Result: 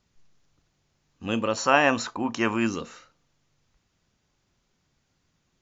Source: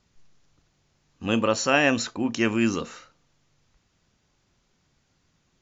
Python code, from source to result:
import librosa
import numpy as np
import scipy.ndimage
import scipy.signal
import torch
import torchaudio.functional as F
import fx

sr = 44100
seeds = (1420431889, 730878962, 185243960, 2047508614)

y = fx.peak_eq(x, sr, hz=990.0, db=11.5, octaves=1.1, at=(1.57, 2.67))
y = y * 10.0 ** (-3.5 / 20.0)